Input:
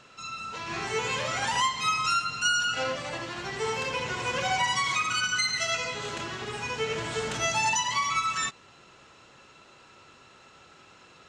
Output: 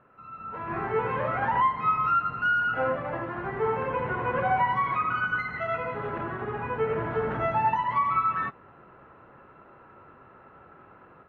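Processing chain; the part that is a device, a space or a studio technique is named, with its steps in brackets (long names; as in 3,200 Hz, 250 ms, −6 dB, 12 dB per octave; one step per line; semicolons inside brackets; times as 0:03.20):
action camera in a waterproof case (low-pass filter 1,600 Hz 24 dB per octave; automatic gain control gain up to 8 dB; level −3.5 dB; AAC 48 kbit/s 24,000 Hz)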